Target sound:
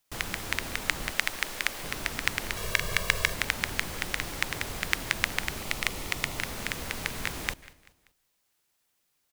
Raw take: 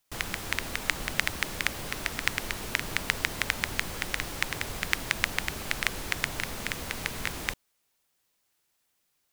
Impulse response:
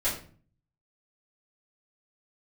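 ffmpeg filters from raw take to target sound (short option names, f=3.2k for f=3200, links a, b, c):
-filter_complex "[0:a]asettb=1/sr,asplit=3[a][b][c];[a]atrim=end=1.104[d];[b]atrim=start=1.1:end=1.84,asetpts=PTS-STARTPTS,afade=t=in:d=0.004:c=qsin,afade=t=out:st=0.736:d=0.004:c=qsin,equalizer=f=96:t=o:w=2.7:g=-12.5[e];[c]atrim=start=1.836[f];[d][e]acrossfade=d=0.004:c1=hsin:c2=qsin[g];[g][f]acrossfade=d=0.004:c1=qsin:c2=hsin,asettb=1/sr,asplit=3[h][i][j];[h]atrim=end=2.564[k];[i]atrim=start=2.56:end=3.34,asetpts=PTS-STARTPTS,afade=t=in:d=0.004:c=qsin,afade=t=out:st=0.776:d=0.004:c=qsin,aecho=1:1:1.8:0.93,atrim=end_sample=34398[l];[j]atrim=start=3.336[m];[k][l]acrossfade=d=0.004:c1=hsin:c2=qsin[n];[n][m]acrossfade=d=0.004:c1=qsin:c2=hsin,asettb=1/sr,asplit=3[o][p][q];[o]atrim=end=5.614[r];[p]atrim=start=5.61:end=6.38,asetpts=PTS-STARTPTS,afade=t=in:d=0.004:c=qsin,afade=t=out:st=0.766:d=0.004:c=qsin,bandreject=f=1.6k:w=5.1[s];[q]atrim=start=6.376[t];[r][s]acrossfade=d=0.004:c1=hsin:c2=qsin[u];[u][t]acrossfade=d=0.004:c1=qsin:c2=hsin,aecho=1:1:193|386|579:0.0891|0.0419|0.0197,asplit=2[v][w];[1:a]atrim=start_sample=2205,adelay=136[x];[w][x]afir=irnorm=-1:irlink=0,volume=-31.5dB[y];[v][y]amix=inputs=2:normalize=0"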